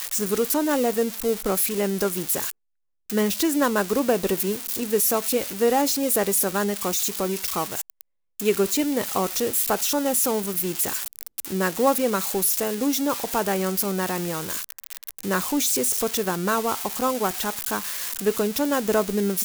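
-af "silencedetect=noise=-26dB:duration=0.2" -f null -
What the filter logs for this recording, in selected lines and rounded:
silence_start: 2.51
silence_end: 3.10 | silence_duration: 0.58
silence_start: 8.01
silence_end: 8.40 | silence_duration: 0.39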